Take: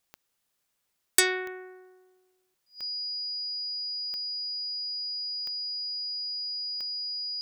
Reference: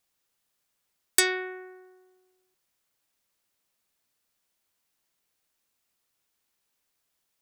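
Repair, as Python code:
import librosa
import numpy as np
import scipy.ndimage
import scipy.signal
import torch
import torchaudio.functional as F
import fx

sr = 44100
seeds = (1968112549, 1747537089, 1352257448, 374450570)

y = fx.fix_declick_ar(x, sr, threshold=10.0)
y = fx.notch(y, sr, hz=4900.0, q=30.0)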